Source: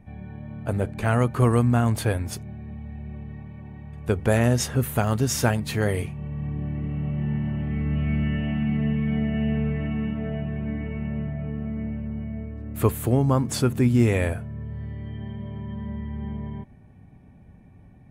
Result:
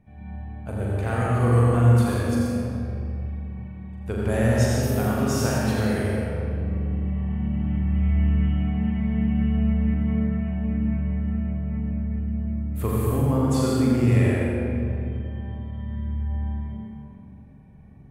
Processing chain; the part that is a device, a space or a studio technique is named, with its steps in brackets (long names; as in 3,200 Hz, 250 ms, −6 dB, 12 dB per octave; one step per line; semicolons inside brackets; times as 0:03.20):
tunnel (flutter between parallel walls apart 7.2 metres, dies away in 0.58 s; convolution reverb RT60 2.7 s, pre-delay 70 ms, DRR −3.5 dB)
level −8 dB